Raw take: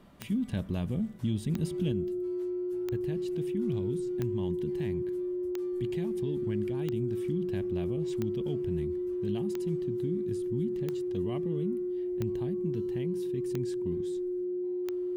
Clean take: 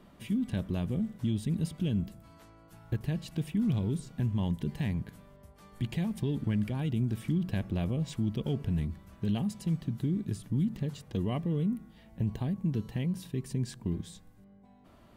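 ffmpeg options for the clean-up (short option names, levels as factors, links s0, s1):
-af "adeclick=t=4,bandreject=f=360:w=30,asetnsamples=n=441:p=0,asendcmd='1.92 volume volume 5dB',volume=1"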